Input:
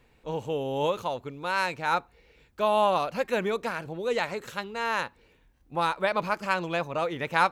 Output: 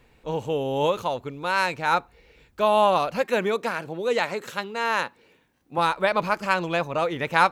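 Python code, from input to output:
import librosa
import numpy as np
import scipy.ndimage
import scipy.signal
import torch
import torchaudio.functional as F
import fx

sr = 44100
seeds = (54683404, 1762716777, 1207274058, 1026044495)

y = fx.highpass(x, sr, hz=160.0, slope=12, at=(3.22, 5.78))
y = y * librosa.db_to_amplitude(4.0)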